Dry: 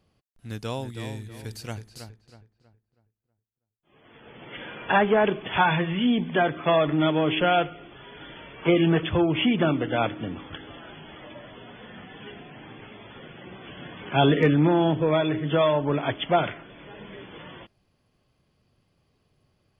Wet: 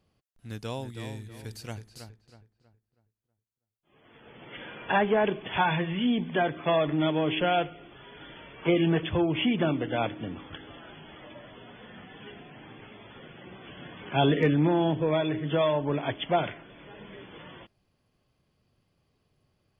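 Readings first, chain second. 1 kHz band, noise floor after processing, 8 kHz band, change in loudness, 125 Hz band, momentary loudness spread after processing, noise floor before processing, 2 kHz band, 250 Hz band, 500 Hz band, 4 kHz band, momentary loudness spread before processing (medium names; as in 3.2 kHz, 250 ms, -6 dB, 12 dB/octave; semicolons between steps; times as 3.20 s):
-4.0 dB, -78 dBFS, no reading, -3.5 dB, -3.5 dB, 22 LU, -75 dBFS, -4.5 dB, -3.5 dB, -3.5 dB, -3.5 dB, 22 LU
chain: dynamic bell 1.3 kHz, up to -5 dB, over -46 dBFS, Q 5; trim -3.5 dB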